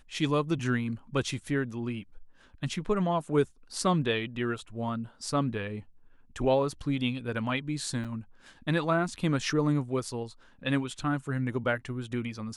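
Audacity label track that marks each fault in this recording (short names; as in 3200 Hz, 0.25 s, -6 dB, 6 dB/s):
8.040000	8.050000	gap 6.8 ms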